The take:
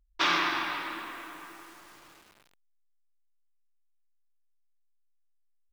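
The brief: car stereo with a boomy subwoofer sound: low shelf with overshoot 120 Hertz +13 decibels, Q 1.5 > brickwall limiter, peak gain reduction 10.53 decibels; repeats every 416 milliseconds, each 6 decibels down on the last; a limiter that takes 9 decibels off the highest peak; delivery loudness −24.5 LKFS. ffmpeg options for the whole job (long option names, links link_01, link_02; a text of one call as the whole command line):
ffmpeg -i in.wav -af "alimiter=limit=-22dB:level=0:latency=1,lowshelf=frequency=120:width_type=q:width=1.5:gain=13,aecho=1:1:416|832|1248|1664|2080|2496:0.501|0.251|0.125|0.0626|0.0313|0.0157,volume=16.5dB,alimiter=limit=-14.5dB:level=0:latency=1" out.wav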